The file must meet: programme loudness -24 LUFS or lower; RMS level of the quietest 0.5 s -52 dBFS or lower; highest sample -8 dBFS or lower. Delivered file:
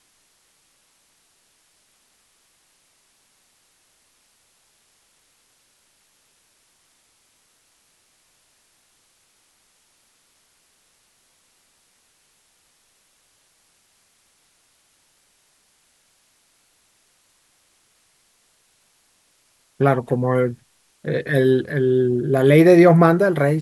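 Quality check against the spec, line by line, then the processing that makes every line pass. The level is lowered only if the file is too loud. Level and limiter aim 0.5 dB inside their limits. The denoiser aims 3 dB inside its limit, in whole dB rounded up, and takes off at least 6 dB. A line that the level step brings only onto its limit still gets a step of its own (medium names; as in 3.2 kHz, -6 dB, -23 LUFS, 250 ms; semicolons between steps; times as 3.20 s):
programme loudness -17.0 LUFS: fail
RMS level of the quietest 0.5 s -62 dBFS: pass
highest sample -2.0 dBFS: fail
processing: trim -7.5 dB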